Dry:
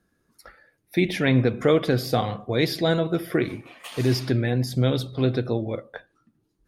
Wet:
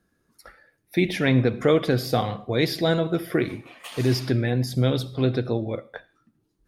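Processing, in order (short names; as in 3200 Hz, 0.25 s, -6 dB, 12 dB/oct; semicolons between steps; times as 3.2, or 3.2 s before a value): on a send: passive tone stack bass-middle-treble 10-0-10 + reverb RT60 0.45 s, pre-delay 25 ms, DRR 22.5 dB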